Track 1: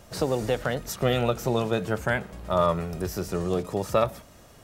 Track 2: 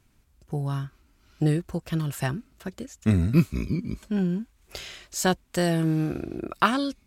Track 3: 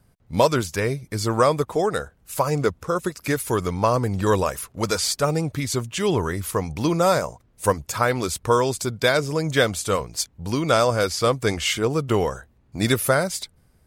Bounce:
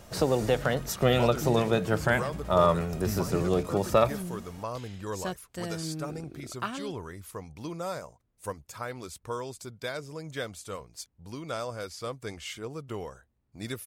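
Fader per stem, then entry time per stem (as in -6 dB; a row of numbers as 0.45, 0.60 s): +0.5, -12.5, -16.0 dB; 0.00, 0.00, 0.80 s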